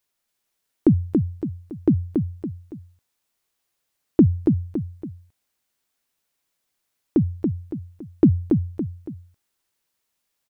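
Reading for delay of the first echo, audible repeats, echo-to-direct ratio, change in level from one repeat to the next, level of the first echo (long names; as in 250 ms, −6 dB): 281 ms, 3, −3.5 dB, −8.0 dB, −4.5 dB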